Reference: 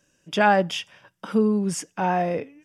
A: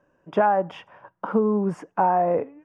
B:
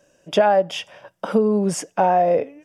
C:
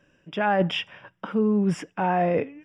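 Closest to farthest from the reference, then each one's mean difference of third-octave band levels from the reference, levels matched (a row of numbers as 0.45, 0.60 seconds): B, C, A; 3.0, 4.0, 5.5 decibels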